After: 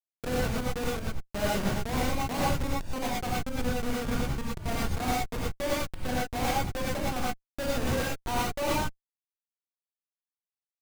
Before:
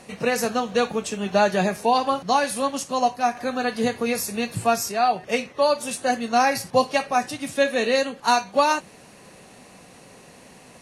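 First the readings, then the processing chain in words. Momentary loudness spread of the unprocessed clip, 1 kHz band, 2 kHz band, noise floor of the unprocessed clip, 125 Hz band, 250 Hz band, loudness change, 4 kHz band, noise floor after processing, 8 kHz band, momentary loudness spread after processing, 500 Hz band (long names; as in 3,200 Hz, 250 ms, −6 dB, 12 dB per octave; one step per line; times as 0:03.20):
5 LU, −11.5 dB, −8.5 dB, −48 dBFS, +4.5 dB, −5.0 dB, −8.5 dB, −7.0 dB, below −85 dBFS, −7.5 dB, 4 LU, −10.5 dB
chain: high-shelf EQ 8,900 Hz +3 dB
comparator with hysteresis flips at −17.5 dBFS
reverb whose tail is shaped and stops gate 140 ms rising, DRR −5.5 dB
level −9 dB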